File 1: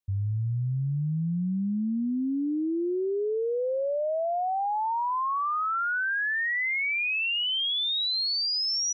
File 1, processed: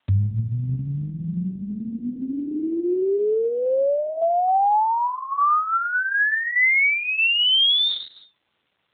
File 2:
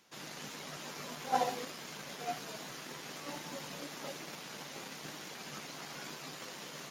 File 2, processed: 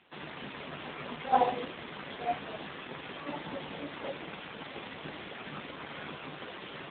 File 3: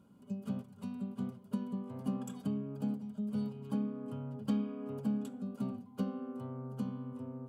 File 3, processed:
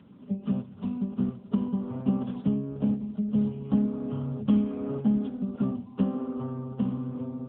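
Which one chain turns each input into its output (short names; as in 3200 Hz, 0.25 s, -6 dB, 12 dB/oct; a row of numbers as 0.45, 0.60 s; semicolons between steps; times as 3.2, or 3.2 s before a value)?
AMR-NB 7.95 kbps 8000 Hz; normalise peaks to -12 dBFS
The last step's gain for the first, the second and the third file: +13.0, +6.5, +10.0 dB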